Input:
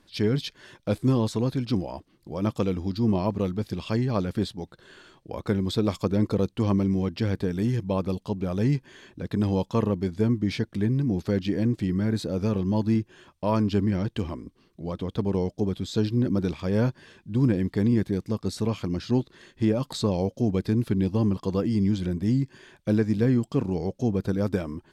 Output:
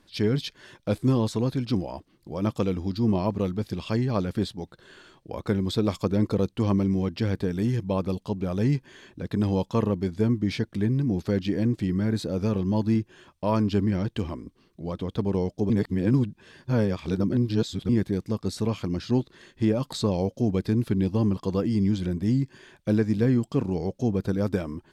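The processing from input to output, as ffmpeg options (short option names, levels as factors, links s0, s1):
-filter_complex "[0:a]asplit=3[s0][s1][s2];[s0]atrim=end=15.702[s3];[s1]atrim=start=15.698:end=17.892,asetpts=PTS-STARTPTS,areverse[s4];[s2]atrim=start=17.888[s5];[s3][s4]acrossfade=d=0.004:c1=hsin:c2=hsin[s6];[s6][s5]acrossfade=d=0.004:c1=hsin:c2=hsin"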